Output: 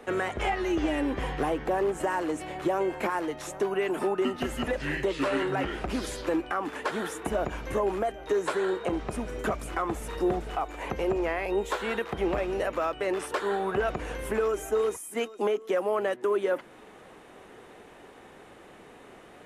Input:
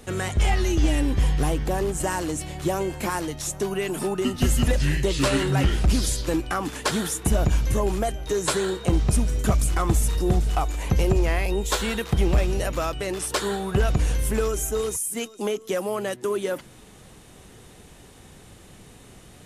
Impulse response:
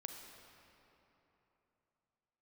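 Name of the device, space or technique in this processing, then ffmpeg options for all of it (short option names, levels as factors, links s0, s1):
DJ mixer with the lows and highs turned down: -filter_complex "[0:a]acrossover=split=280 2500:gain=0.112 1 0.141[s0][s1][s2];[s0][s1][s2]amix=inputs=3:normalize=0,alimiter=limit=0.0794:level=0:latency=1:release=344,volume=1.58"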